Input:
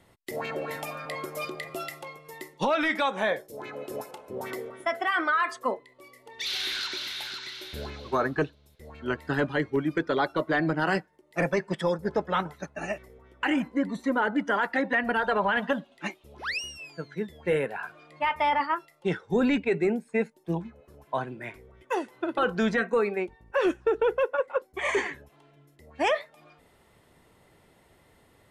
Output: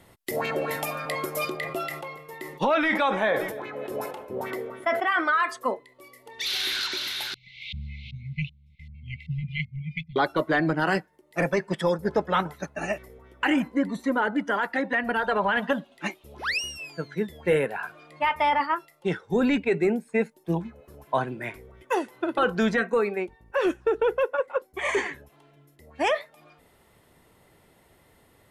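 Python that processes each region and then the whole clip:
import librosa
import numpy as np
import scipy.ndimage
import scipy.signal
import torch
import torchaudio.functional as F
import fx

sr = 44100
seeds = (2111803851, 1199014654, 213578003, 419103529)

y = fx.chain(x, sr, fx.bass_treble(bass_db=-1, treble_db=-9),
    fx.echo_feedback(ms=289, feedback_pct=44, wet_db=-22.0),
    fx.sustainer(db_per_s=62.0), at=(1.57, 5.19))
y = fx.chain(y, sr, fx.filter_lfo_lowpass(shape='saw_up', hz=2.6, low_hz=600.0, high_hz=3100.0, q=2.4),
    fx.brickwall_bandstop(low_hz=210.0, high_hz=2000.0), at=(7.34, 10.16))
y = fx.peak_eq(y, sr, hz=12000.0, db=5.5, octaves=0.57)
y = fx.rider(y, sr, range_db=3, speed_s=2.0)
y = y * librosa.db_to_amplitude(2.0)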